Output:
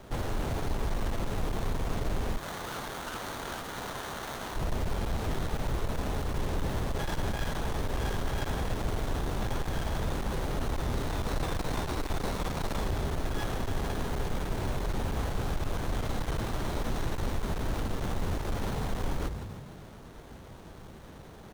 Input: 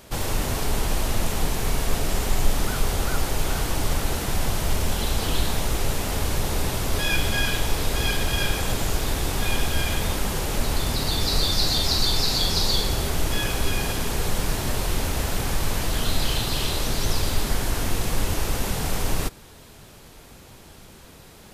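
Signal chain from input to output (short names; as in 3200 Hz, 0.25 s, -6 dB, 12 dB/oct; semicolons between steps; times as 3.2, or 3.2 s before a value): frequency-shifting echo 0.153 s, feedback 50%, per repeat +43 Hz, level -15.5 dB; wavefolder -17 dBFS; 2.37–4.56 HPF 1300 Hz 12 dB/oct; compressor, threshold -23 dBFS, peak gain reduction 4 dB; limiter -22 dBFS, peak gain reduction 4.5 dB; running maximum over 17 samples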